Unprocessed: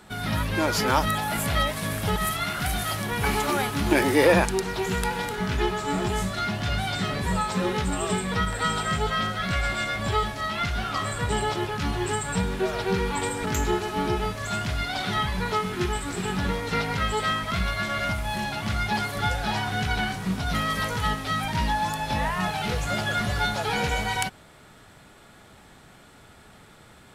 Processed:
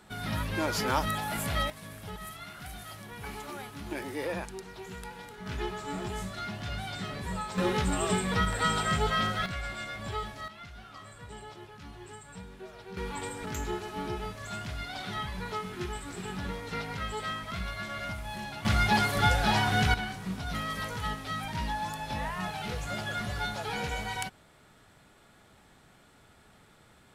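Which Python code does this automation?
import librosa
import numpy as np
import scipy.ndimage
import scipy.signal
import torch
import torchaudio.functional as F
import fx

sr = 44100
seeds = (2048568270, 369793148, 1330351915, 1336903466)

y = fx.gain(x, sr, db=fx.steps((0.0, -6.0), (1.7, -16.0), (5.46, -9.5), (7.58, -2.0), (9.46, -10.5), (10.48, -19.5), (12.97, -9.5), (18.65, 1.5), (19.94, -8.0)))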